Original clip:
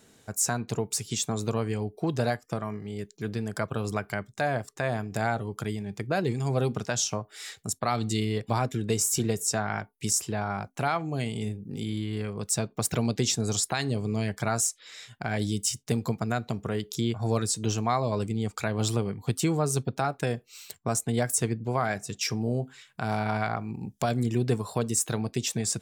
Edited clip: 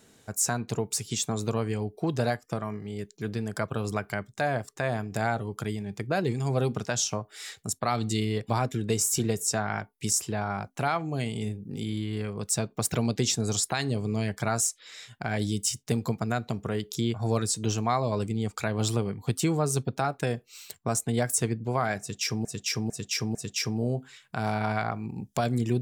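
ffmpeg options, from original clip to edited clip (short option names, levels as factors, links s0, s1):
-filter_complex "[0:a]asplit=4[s0][s1][s2][s3];[s0]atrim=end=22.452[s4];[s1]atrim=start=21.998:end=22.452[s5];[s2]atrim=start=21.998:end=22.452[s6];[s3]atrim=start=21.998[s7];[s4][s5]acrossfade=d=0.004:c1=hsin:c2=hsin[s8];[s8][s6]acrossfade=d=0.004:c1=hsin:c2=hsin[s9];[s9][s7]acrossfade=d=0.004:c1=hsin:c2=hsin"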